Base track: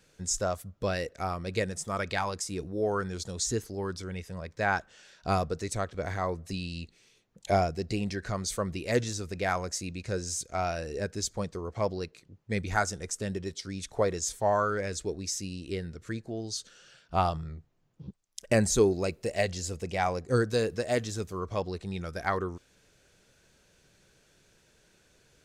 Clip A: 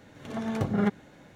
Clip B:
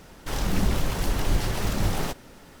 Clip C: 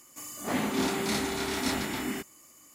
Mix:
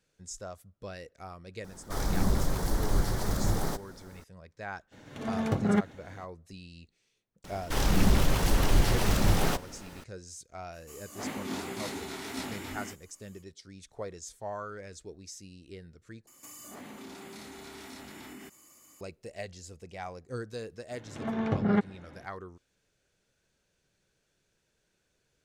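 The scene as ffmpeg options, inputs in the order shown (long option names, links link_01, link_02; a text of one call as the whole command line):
ffmpeg -i bed.wav -i cue0.wav -i cue1.wav -i cue2.wav -filter_complex "[2:a]asplit=2[link_01][link_02];[1:a]asplit=2[link_03][link_04];[3:a]asplit=2[link_05][link_06];[0:a]volume=-12dB[link_07];[link_01]equalizer=frequency=2700:width_type=o:width=0.61:gain=-13[link_08];[link_02]acontrast=67[link_09];[link_05]flanger=delay=15.5:depth=6.9:speed=3[link_10];[link_06]acompressor=threshold=-41dB:ratio=6:attack=3.2:release=140:knee=1:detection=peak[link_11];[link_04]lowpass=3300[link_12];[link_07]asplit=2[link_13][link_14];[link_13]atrim=end=16.274[link_15];[link_11]atrim=end=2.74,asetpts=PTS-STARTPTS,volume=-2.5dB[link_16];[link_14]atrim=start=19.006[link_17];[link_08]atrim=end=2.6,asetpts=PTS-STARTPTS,volume=-3dB,afade=type=in:duration=0.004:curve=hsin,afade=type=out:start_time=2.596:duration=0.004:curve=hsin,adelay=1640[link_18];[link_03]atrim=end=1.35,asetpts=PTS-STARTPTS,afade=type=in:duration=0.02,afade=type=out:start_time=1.33:duration=0.02,adelay=4910[link_19];[link_09]atrim=end=2.6,asetpts=PTS-STARTPTS,volume=-5.5dB,afade=type=in:duration=0.004:curve=hsin,afade=type=out:start_time=2.596:duration=0.004:curve=hsin,adelay=7440[link_20];[link_10]atrim=end=2.74,asetpts=PTS-STARTPTS,volume=-5dB,afade=type=in:duration=0.05,afade=type=out:start_time=2.69:duration=0.05,adelay=10710[link_21];[link_12]atrim=end=1.35,asetpts=PTS-STARTPTS,afade=type=in:duration=0.004:curve=hsin,afade=type=out:start_time=1.346:duration=0.004:curve=hsin,adelay=20910[link_22];[link_15][link_16]acrossfade=duration=0.004:curve1=hsin:curve2=hsin[link_23];[link_23][link_17]acrossfade=duration=0.004:curve1=hsin:curve2=hsin[link_24];[link_24][link_18][link_19][link_20][link_21][link_22]amix=inputs=6:normalize=0" out.wav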